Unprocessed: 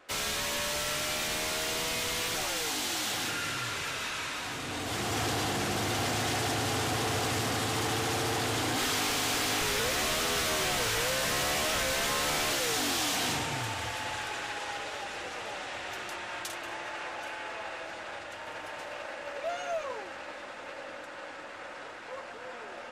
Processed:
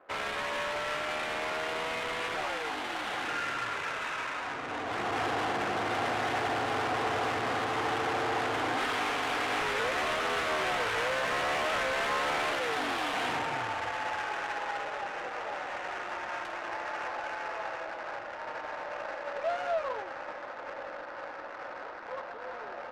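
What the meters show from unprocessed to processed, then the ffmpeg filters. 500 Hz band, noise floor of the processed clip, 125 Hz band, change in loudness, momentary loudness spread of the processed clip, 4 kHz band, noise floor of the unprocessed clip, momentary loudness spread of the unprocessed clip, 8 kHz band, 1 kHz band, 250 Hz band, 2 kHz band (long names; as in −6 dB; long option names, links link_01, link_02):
+1.5 dB, −42 dBFS, −8.5 dB, −1.5 dB, 11 LU, −6.5 dB, −43 dBFS, 14 LU, −14.0 dB, +3.5 dB, −3.0 dB, +1.0 dB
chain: -filter_complex "[0:a]lowshelf=frequency=240:gain=-10.5,asplit=2[link_01][link_02];[link_02]highpass=frequency=720:poles=1,volume=8dB,asoftclip=type=tanh:threshold=-19.5dB[link_03];[link_01][link_03]amix=inputs=2:normalize=0,lowpass=frequency=1400:poles=1,volume=-6dB,adynamicsmooth=sensitivity=7:basefreq=970,volume=4dB"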